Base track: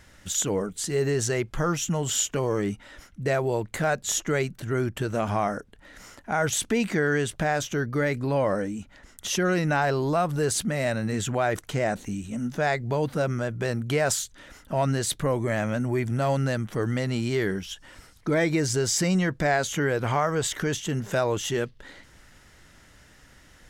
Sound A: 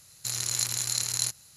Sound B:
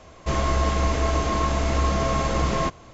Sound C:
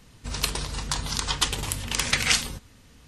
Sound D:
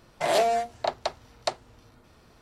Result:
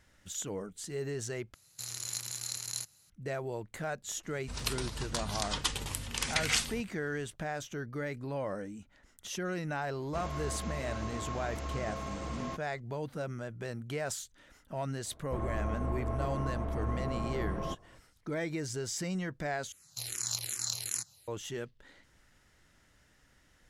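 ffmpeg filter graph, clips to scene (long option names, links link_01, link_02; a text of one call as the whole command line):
ffmpeg -i bed.wav -i cue0.wav -i cue1.wav -i cue2.wav -filter_complex "[1:a]asplit=2[link_01][link_02];[2:a]asplit=2[link_03][link_04];[0:a]volume=-12dB[link_05];[link_01]highpass=59[link_06];[link_03]highpass=43[link_07];[link_04]lowpass=1100[link_08];[link_02]asplit=2[link_09][link_10];[link_10]afreqshift=-2.6[link_11];[link_09][link_11]amix=inputs=2:normalize=1[link_12];[link_05]asplit=3[link_13][link_14][link_15];[link_13]atrim=end=1.544[link_16];[link_06]atrim=end=1.56,asetpts=PTS-STARTPTS,volume=-9.5dB[link_17];[link_14]atrim=start=3.096:end=19.724[link_18];[link_12]atrim=end=1.56,asetpts=PTS-STARTPTS,volume=-4dB[link_19];[link_15]atrim=start=21.276[link_20];[3:a]atrim=end=3.07,asetpts=PTS-STARTPTS,volume=-8dB,afade=type=in:duration=0.004:curve=hsin,afade=type=out:start_time=3.066:duration=0.004:curve=hsin,adelay=4230[link_21];[link_07]atrim=end=2.93,asetpts=PTS-STARTPTS,volume=-16dB,afade=type=in:duration=0.004:curve=hsin,afade=type=out:start_time=2.926:duration=0.004:curve=hsin,adelay=9870[link_22];[link_08]atrim=end=2.93,asetpts=PTS-STARTPTS,volume=-12dB,afade=type=in:duration=0.004:curve=hsin,afade=type=out:start_time=2.926:duration=0.004:curve=hsin,adelay=15050[link_23];[link_16][link_17]acrossfade=duration=0.004:curve1=hsin:curve2=hsin[link_24];[link_24][link_18]acrossfade=duration=0.004:curve1=hsin:curve2=hsin[link_25];[link_25][link_19]acrossfade=duration=0.004:curve1=hsin:curve2=hsin[link_26];[link_26][link_20]acrossfade=duration=0.004:curve1=hsin:curve2=hsin[link_27];[link_27][link_21][link_22][link_23]amix=inputs=4:normalize=0" out.wav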